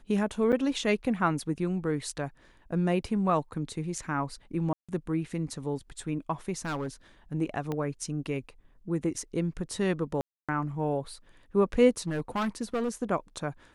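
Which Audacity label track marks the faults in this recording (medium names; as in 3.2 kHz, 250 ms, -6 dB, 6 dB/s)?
0.520000	0.530000	dropout 7 ms
4.730000	4.890000	dropout 156 ms
6.580000	6.880000	clipped -28.5 dBFS
7.720000	7.720000	pop -20 dBFS
10.210000	10.490000	dropout 276 ms
11.990000	12.890000	clipped -25.5 dBFS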